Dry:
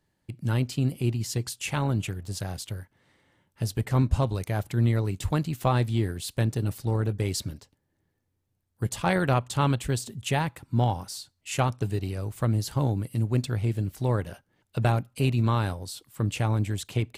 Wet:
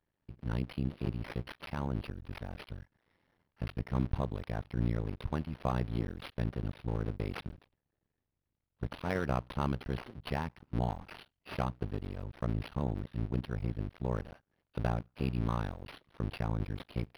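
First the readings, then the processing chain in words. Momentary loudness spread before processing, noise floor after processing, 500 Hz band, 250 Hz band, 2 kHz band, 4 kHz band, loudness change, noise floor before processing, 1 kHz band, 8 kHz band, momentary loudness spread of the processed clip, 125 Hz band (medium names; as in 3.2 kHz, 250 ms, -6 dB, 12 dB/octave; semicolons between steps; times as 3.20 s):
9 LU, under -85 dBFS, -8.5 dB, -7.5 dB, -9.5 dB, -13.0 dB, -9.5 dB, -76 dBFS, -9.5 dB, under -25 dB, 10 LU, -10.5 dB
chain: cycle switcher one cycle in 2, muted; decimation joined by straight lines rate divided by 6×; trim -6 dB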